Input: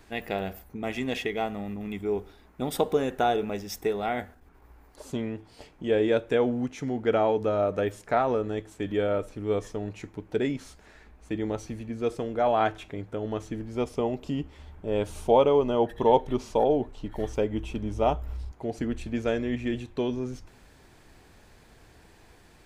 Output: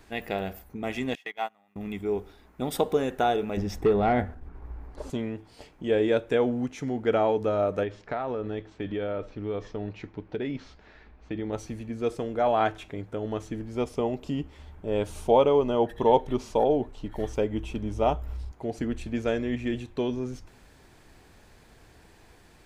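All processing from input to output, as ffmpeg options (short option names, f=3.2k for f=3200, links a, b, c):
-filter_complex "[0:a]asettb=1/sr,asplit=3[a][b][c];[a]atrim=end=1.154[d];[b]atrim=start=1.15:end=1.76,asetpts=PTS-STARTPTS,afade=t=in:d=0.004:c=qsin,afade=t=out:st=0.606:d=0.004:c=qsin,highpass=190,agate=range=-22dB:threshold=-30dB:ratio=16:release=100:detection=peak,lowshelf=f=610:t=q:w=1.5:g=-10[e];[c]atrim=start=1.756[f];[d][e]acrossfade=d=0.004:c1=hsin:c2=qsin[g];[g][f]acrossfade=d=0.004:c1=qsin:c2=hsin,asettb=1/sr,asplit=3[h][i][j];[h]atrim=end=3.574[k];[i]atrim=start=3.57:end=5.1,asetpts=PTS-STARTPTS,afade=t=in:d=0.004:c=qsin,afade=t=out:st=1.526:d=0.004:c=qsin,lowshelf=f=160:g=9,aeval=exprs='0.178*sin(PI/2*1.41*val(0)/0.178)':c=same,lowpass=f=1.5k:p=1[l];[j]atrim=start=5.096[m];[k][l]acrossfade=d=0.004:c1=hsin:c2=qsin[n];[n][m]acrossfade=d=0.004:c1=qsin:c2=hsin,asettb=1/sr,asplit=3[o][p][q];[o]atrim=end=7.834[r];[p]atrim=start=7.83:end=11.53,asetpts=PTS-STARTPTS,afade=t=in:d=0.004:c=qsin,afade=t=out:st=3.696:d=0.004:c=qsin,lowpass=f=4.8k:w=0.5412,lowpass=f=4.8k:w=1.3066,acompressor=threshold=-27dB:ratio=4:attack=3.2:release=140:knee=1:detection=peak[s];[q]atrim=start=11.526[t];[r][s]acrossfade=d=0.004:c1=hsin:c2=qsin[u];[u][t]acrossfade=d=0.004:c1=qsin:c2=hsin"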